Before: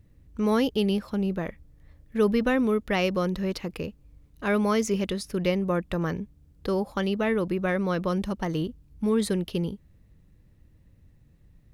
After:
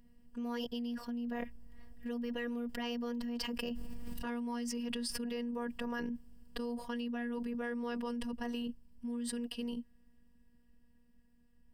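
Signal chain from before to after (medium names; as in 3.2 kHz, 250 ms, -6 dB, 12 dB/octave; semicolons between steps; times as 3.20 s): Doppler pass-by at 4.15 s, 15 m/s, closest 1.3 m; rippled EQ curve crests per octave 1.3, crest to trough 11 dB; robot voice 239 Hz; level flattener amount 100%; trim -8.5 dB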